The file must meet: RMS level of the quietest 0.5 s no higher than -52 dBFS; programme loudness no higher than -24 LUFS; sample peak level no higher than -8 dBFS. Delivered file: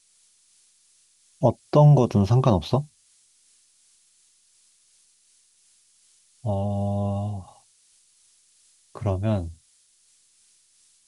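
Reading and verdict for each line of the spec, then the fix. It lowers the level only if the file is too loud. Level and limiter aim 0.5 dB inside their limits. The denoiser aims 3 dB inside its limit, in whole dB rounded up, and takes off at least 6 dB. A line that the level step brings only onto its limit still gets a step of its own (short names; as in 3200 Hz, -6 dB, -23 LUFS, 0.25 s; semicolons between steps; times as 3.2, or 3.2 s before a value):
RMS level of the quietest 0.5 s -62 dBFS: OK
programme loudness -22.5 LUFS: fail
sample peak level -5.0 dBFS: fail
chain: gain -2 dB; limiter -8.5 dBFS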